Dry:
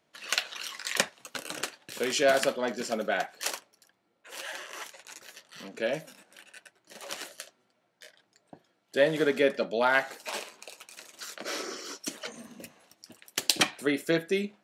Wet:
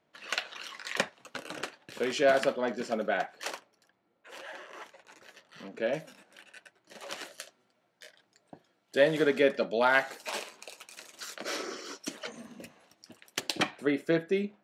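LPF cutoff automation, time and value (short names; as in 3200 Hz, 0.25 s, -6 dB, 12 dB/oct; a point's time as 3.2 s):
LPF 6 dB/oct
2300 Hz
from 4.38 s 1100 Hz
from 5.18 s 1900 Hz
from 5.93 s 4200 Hz
from 7.34 s 10000 Hz
from 9.21 s 5700 Hz
from 9.81 s 11000 Hz
from 11.57 s 4300 Hz
from 13.4 s 1700 Hz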